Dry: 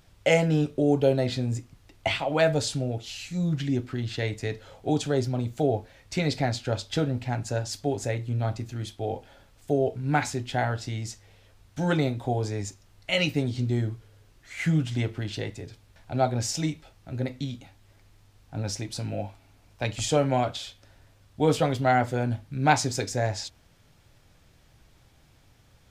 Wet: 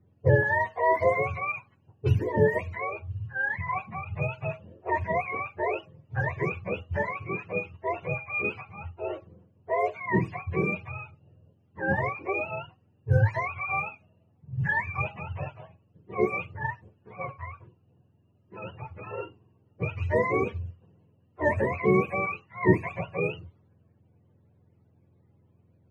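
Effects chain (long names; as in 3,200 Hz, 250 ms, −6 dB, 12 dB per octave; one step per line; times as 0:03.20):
frequency axis turned over on the octave scale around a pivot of 530 Hz
low-pass that shuts in the quiet parts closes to 660 Hz, open at −20 dBFS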